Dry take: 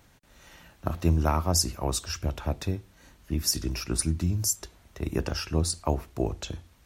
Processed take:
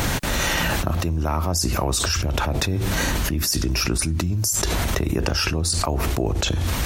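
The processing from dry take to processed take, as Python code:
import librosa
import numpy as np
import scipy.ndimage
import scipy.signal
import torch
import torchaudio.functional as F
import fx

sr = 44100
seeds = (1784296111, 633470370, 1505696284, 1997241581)

y = fx.env_flatten(x, sr, amount_pct=100)
y = F.gain(torch.from_numpy(y), -3.0).numpy()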